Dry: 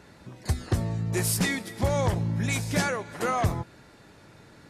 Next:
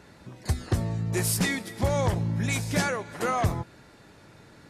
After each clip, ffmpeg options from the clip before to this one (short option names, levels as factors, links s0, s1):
-af anull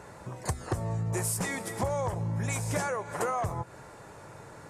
-af "equalizer=f=125:t=o:w=1:g=4,equalizer=f=250:t=o:w=1:g=-5,equalizer=f=500:t=o:w=1:g=6,equalizer=f=1000:t=o:w=1:g=8,equalizer=f=4000:t=o:w=1:g=-7,equalizer=f=8000:t=o:w=1:g=8,acompressor=threshold=0.0355:ratio=6,volume=1.12"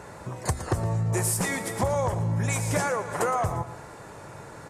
-af "aecho=1:1:115|230|345|460:0.237|0.0877|0.0325|0.012,volume=1.68"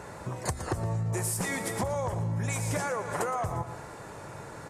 -af "acompressor=threshold=0.0447:ratio=6"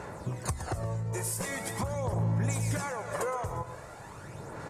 -af "aphaser=in_gain=1:out_gain=1:delay=2.1:decay=0.46:speed=0.43:type=sinusoidal,volume=0.708"